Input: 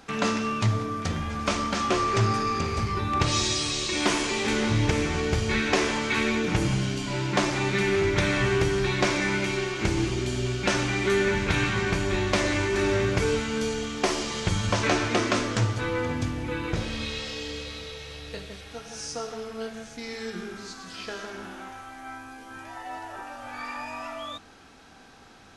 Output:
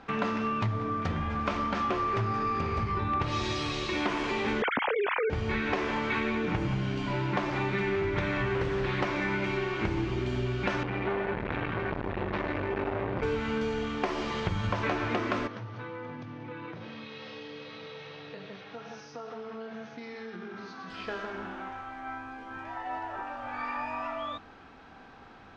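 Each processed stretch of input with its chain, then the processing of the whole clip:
0:04.62–0:05.30: three sine waves on the formant tracks + envelope flattener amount 70%
0:08.54–0:09.05: high-shelf EQ 5,900 Hz +5 dB + highs frequency-modulated by the lows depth 0.46 ms
0:10.83–0:13.23: high-frequency loss of the air 220 metres + saturating transformer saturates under 910 Hz
0:15.47–0:20.90: downward compressor 8 to 1, threshold −36 dBFS + Chebyshev band-pass filter 110–6,200 Hz, order 5
whole clip: low-pass filter 2,700 Hz 12 dB per octave; parametric band 1,000 Hz +3 dB; downward compressor, threshold −26 dBFS

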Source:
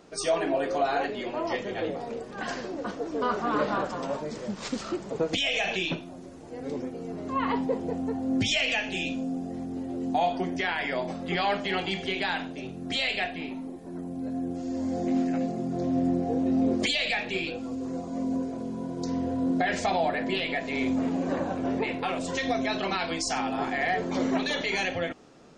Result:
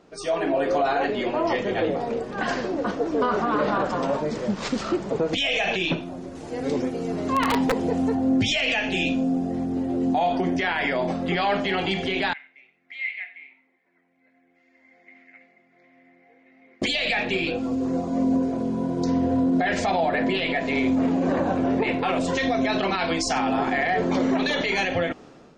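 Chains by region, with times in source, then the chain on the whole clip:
0:06.35–0:08.15: high-shelf EQ 2,300 Hz +9 dB + wrap-around overflow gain 17.5 dB
0:12.33–0:16.82: resonant band-pass 2,100 Hz, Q 17 + single-tap delay 92 ms −16.5 dB
whole clip: high-shelf EQ 5,900 Hz −10 dB; automatic gain control gain up to 9 dB; brickwall limiter −13.5 dBFS; level −1 dB

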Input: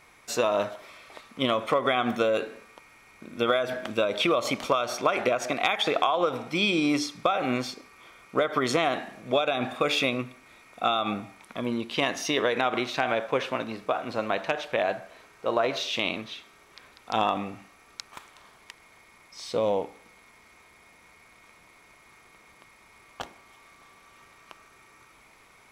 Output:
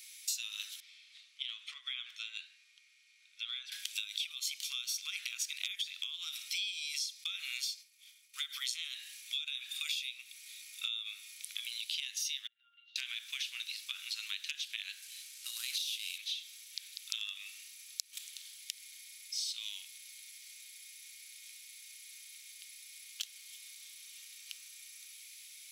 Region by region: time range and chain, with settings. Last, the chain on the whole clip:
0:00.80–0:03.72: head-to-tape spacing loss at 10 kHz 21 dB + flanger 1 Hz, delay 3.1 ms, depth 7.7 ms, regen +78%
0:07.24–0:08.35: downward expander −44 dBFS + high-pass filter 380 Hz
0:12.47–0:12.96: high-frequency loss of the air 160 metres + downward compressor 12 to 1, threshold −30 dBFS + resonances in every octave F, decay 0.24 s
0:15.02–0:16.18: variable-slope delta modulation 64 kbit/s + downward compressor 2.5 to 1, threshold −28 dBFS
whole clip: inverse Chebyshev high-pass filter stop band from 720 Hz, stop band 70 dB; downward compressor 10 to 1, threshold −46 dBFS; high-shelf EQ 11,000 Hz +8 dB; level +10.5 dB

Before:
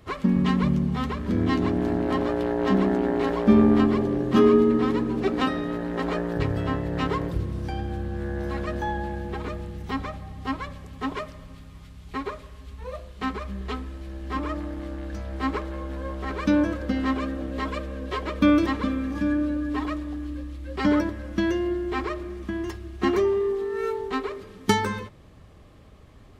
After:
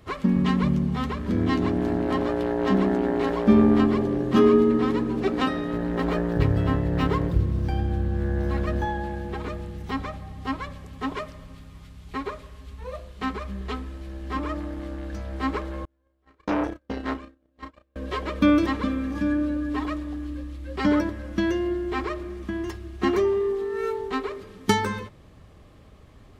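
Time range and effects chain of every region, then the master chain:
0:05.73–0:08.85: running median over 5 samples + low-shelf EQ 210 Hz +7 dB
0:15.85–0:17.96: noise gate −26 dBFS, range −40 dB + double-tracking delay 33 ms −7.5 dB + saturating transformer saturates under 1,100 Hz
whole clip: no processing

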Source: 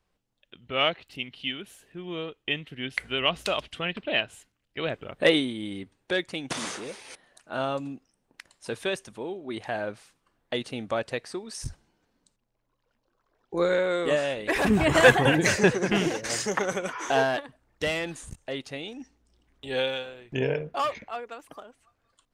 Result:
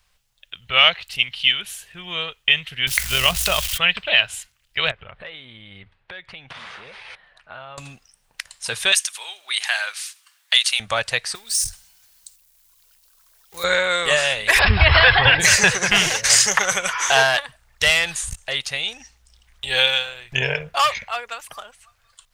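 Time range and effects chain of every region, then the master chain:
0:02.87–0:03.78: spike at every zero crossing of −23 dBFS + spectral tilt −3 dB per octave + amplitude modulation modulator 46 Hz, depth 25%
0:04.91–0:07.78: downward compressor, threshold −39 dBFS + high-frequency loss of the air 410 metres
0:08.92–0:10.80: high-pass filter 1,200 Hz + high-shelf EQ 2,300 Hz +9 dB
0:11.35–0:13.64: mu-law and A-law mismatch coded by mu + first-order pre-emphasis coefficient 0.8
0:14.59–0:15.40: linear-phase brick-wall low-pass 5,400 Hz + low shelf with overshoot 120 Hz +6.5 dB, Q 3
whole clip: guitar amp tone stack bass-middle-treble 10-0-10; boost into a limiter +19 dB; level −1 dB

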